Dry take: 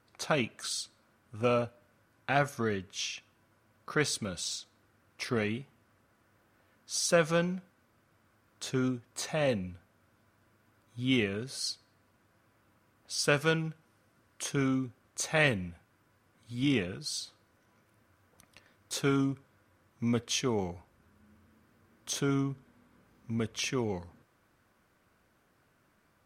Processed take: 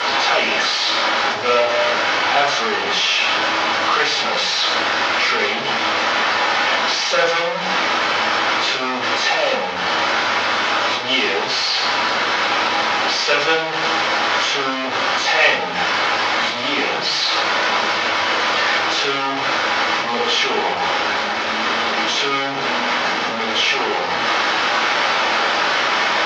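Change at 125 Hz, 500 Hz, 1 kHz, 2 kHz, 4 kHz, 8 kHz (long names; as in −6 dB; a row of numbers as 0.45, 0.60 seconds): −3.5, +13.0, +24.5, +21.5, +22.0, +9.0 decibels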